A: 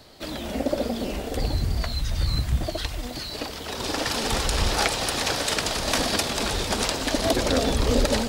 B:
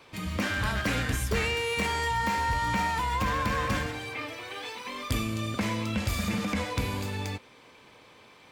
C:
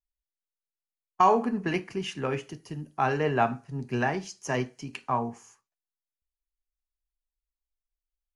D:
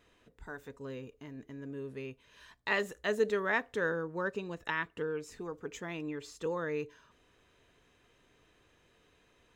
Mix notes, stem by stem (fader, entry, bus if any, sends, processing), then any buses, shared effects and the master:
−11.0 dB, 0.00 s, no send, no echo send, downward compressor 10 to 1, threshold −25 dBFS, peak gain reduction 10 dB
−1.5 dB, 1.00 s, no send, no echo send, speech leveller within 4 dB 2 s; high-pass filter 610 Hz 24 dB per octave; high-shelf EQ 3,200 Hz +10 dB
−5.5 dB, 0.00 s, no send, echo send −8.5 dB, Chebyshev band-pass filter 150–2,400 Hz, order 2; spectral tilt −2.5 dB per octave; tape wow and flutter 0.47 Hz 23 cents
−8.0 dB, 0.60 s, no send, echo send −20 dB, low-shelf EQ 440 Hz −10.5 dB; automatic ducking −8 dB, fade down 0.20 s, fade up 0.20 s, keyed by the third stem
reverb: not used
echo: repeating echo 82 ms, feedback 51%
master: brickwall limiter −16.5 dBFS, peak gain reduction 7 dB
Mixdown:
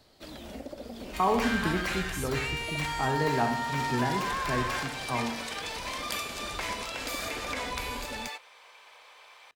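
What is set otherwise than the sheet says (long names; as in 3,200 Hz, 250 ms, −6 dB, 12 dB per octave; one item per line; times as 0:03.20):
stem B: missing high-shelf EQ 3,200 Hz +10 dB
master: missing brickwall limiter −16.5 dBFS, peak gain reduction 7 dB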